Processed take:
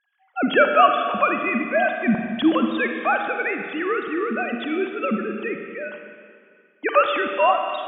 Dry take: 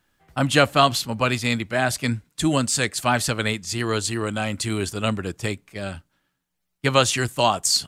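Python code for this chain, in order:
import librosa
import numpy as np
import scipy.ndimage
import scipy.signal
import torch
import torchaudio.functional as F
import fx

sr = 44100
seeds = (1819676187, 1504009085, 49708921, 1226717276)

y = fx.sine_speech(x, sr)
y = fx.rev_schroeder(y, sr, rt60_s=2.2, comb_ms=38, drr_db=4.5)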